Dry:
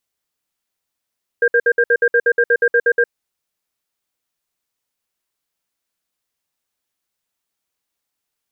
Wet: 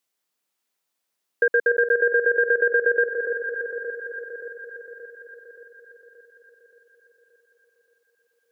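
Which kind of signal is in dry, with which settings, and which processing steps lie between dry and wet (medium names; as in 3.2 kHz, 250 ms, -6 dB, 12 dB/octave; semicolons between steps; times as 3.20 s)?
cadence 475 Hz, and 1.6 kHz, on 0.06 s, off 0.06 s, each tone -13 dBFS 1.62 s
high-pass 190 Hz 12 dB/octave; on a send: echo whose repeats swap between lows and highs 288 ms, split 1.3 kHz, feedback 75%, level -7 dB; on the sum: compression 3:1, threshold -17 dBFS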